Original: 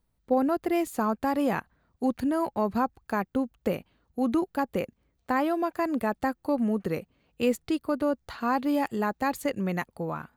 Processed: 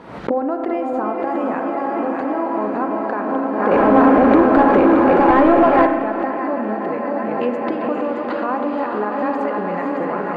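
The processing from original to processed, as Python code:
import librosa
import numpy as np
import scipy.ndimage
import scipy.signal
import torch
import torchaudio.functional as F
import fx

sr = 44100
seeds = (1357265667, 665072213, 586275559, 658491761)

y = fx.reverse_delay_fb(x, sr, ms=310, feedback_pct=81, wet_db=-8)
y = fx.recorder_agc(y, sr, target_db=-17.0, rise_db_per_s=69.0, max_gain_db=30)
y = scipy.signal.sosfilt(scipy.signal.butter(2, 300.0, 'highpass', fs=sr, output='sos'), y)
y = fx.echo_diffused(y, sr, ms=489, feedback_pct=62, wet_db=-5.5)
y = fx.leveller(y, sr, passes=3, at=(3.71, 5.87))
y = scipy.signal.sosfilt(scipy.signal.butter(2, 1700.0, 'lowpass', fs=sr, output='sos'), y)
y = fx.rev_spring(y, sr, rt60_s=1.3, pass_ms=(33,), chirp_ms=30, drr_db=6.5)
y = fx.pre_swell(y, sr, db_per_s=45.0)
y = y * librosa.db_to_amplitude(3.0)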